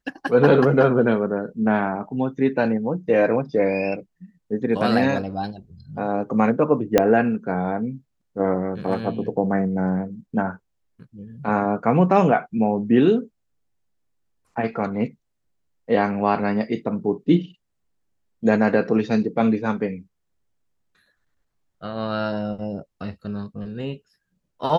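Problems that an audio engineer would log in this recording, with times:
6.98 pop -2 dBFS

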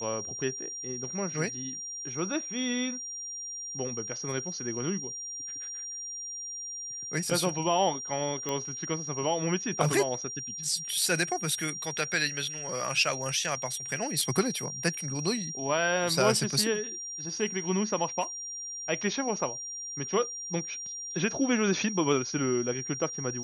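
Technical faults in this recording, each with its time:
tone 5700 Hz -36 dBFS
8.49 pop -17 dBFS

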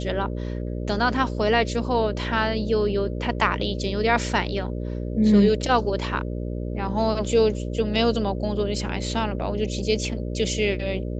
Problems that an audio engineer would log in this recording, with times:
buzz 60 Hz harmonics 10 -29 dBFS

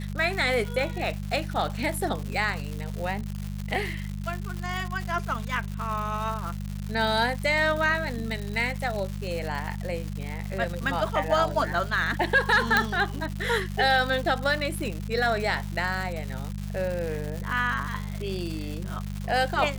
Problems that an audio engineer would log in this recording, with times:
crackle 250/s -31 dBFS
hum 50 Hz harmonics 4 -33 dBFS
12.77 pop -7 dBFS

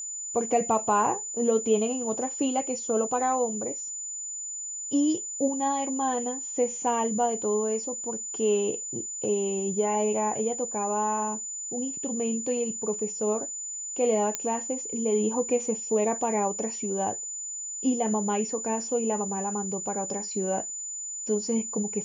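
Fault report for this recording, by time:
tone 7000 Hz -33 dBFS
14.35 pop -11 dBFS

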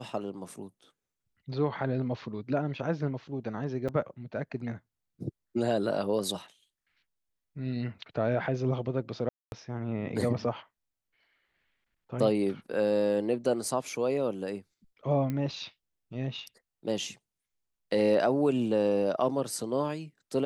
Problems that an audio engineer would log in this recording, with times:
3.88–3.89 gap 6.5 ms
9.29–9.52 gap 0.231 s
15.3 pop -21 dBFS

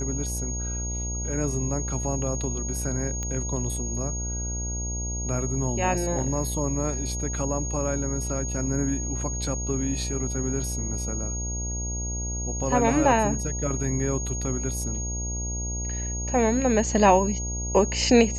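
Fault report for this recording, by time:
buzz 60 Hz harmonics 16 -31 dBFS
tone 6600 Hz -32 dBFS
3.23 pop -18 dBFS

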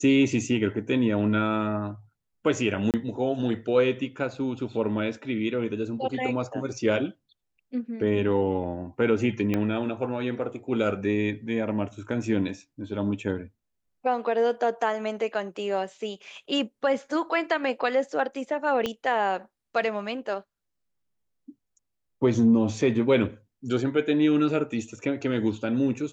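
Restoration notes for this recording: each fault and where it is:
2.91–2.94 gap 28 ms
9.54 pop -14 dBFS
18.86 pop -14 dBFS

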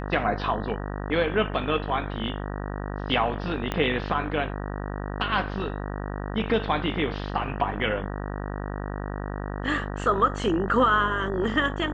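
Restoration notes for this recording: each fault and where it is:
buzz 50 Hz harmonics 38 -32 dBFS
3.72 pop -13 dBFS

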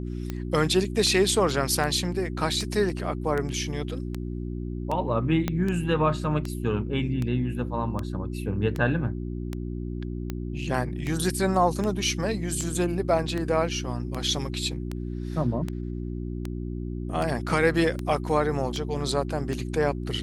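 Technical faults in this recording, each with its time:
hum 60 Hz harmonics 6 -32 dBFS
tick 78 rpm -17 dBFS
5.48 pop -12 dBFS

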